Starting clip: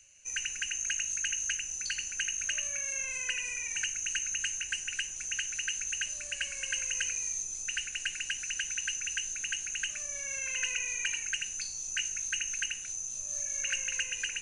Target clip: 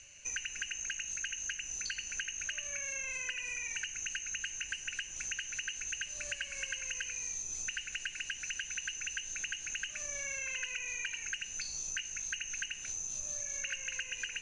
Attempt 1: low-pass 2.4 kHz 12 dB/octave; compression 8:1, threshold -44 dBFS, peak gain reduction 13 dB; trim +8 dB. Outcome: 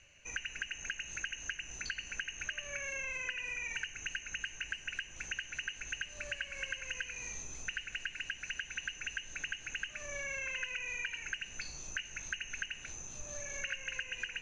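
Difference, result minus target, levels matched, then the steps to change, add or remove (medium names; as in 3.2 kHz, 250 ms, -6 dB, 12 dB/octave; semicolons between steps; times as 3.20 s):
2 kHz band +3.5 dB
change: low-pass 5.4 kHz 12 dB/octave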